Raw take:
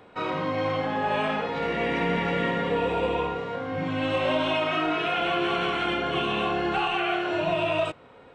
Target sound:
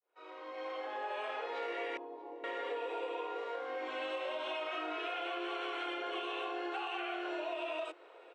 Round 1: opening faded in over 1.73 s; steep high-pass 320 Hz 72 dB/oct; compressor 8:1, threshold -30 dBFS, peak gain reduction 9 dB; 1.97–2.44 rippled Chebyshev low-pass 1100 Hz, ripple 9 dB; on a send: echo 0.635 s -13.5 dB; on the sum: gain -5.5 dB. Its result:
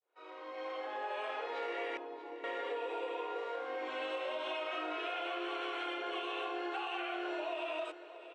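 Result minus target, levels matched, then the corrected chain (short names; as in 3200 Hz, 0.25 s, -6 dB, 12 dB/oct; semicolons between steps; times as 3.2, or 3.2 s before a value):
echo-to-direct +11 dB
opening faded in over 1.73 s; steep high-pass 320 Hz 72 dB/oct; compressor 8:1, threshold -30 dBFS, peak gain reduction 9 dB; 1.97–2.44 rippled Chebyshev low-pass 1100 Hz, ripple 9 dB; on a send: echo 0.635 s -24.5 dB; on the sum: gain -5.5 dB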